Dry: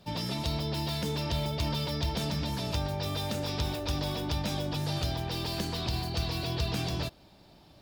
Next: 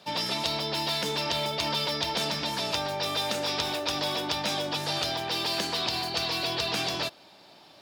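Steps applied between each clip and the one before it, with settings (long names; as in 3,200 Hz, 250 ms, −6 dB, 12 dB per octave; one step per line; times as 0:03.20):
meter weighting curve A
level +7 dB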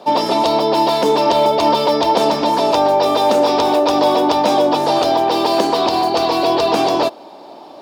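flat-topped bell 510 Hz +15 dB 2.6 octaves
level +4.5 dB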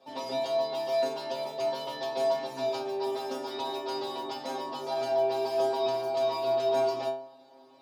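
stiff-string resonator 130 Hz, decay 0.57 s, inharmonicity 0.002
level −4 dB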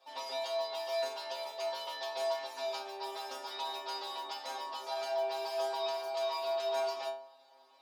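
high-pass filter 880 Hz 12 dB per octave
level −1 dB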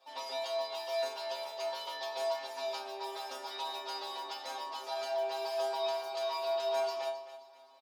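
repeating echo 265 ms, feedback 38%, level −14 dB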